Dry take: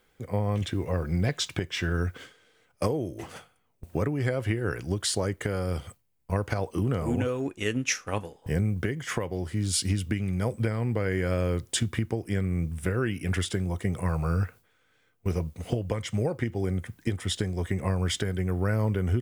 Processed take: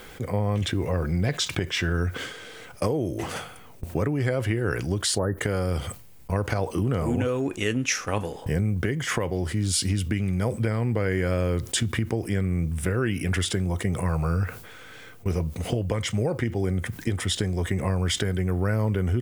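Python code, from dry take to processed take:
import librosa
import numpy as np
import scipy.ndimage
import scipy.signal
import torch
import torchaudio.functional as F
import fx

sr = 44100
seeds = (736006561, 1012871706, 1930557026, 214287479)

y = fx.spec_erase(x, sr, start_s=5.18, length_s=0.2, low_hz=1900.0, high_hz=10000.0)
y = fx.env_flatten(y, sr, amount_pct=50)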